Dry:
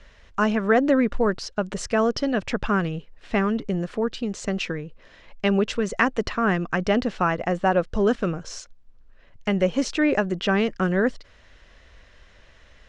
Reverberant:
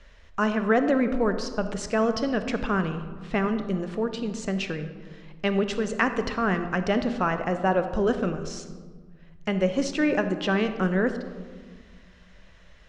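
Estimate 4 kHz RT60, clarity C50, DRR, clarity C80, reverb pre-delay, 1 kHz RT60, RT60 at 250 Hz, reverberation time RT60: 0.80 s, 9.5 dB, 8.5 dB, 11.0 dB, 26 ms, 1.4 s, 2.3 s, 1.5 s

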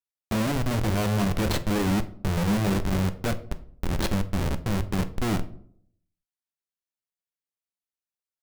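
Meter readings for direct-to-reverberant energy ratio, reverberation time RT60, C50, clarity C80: 9.5 dB, 0.60 s, 15.5 dB, 19.5 dB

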